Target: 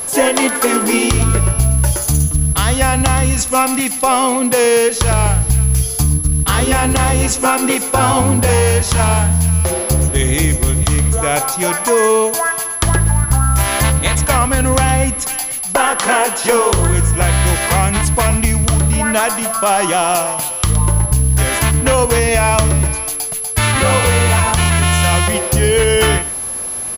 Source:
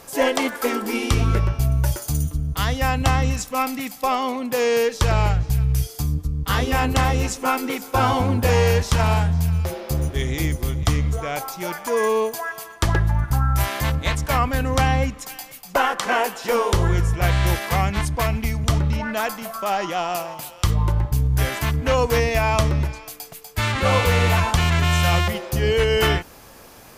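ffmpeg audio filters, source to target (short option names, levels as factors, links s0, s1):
-af "acompressor=threshold=0.1:ratio=6,aeval=exprs='val(0)+0.0251*sin(2*PI*11000*n/s)':c=same,aecho=1:1:117:0.15,acrusher=bits=7:mode=log:mix=0:aa=0.000001,alimiter=level_in=3.98:limit=0.891:release=50:level=0:latency=1,volume=0.891"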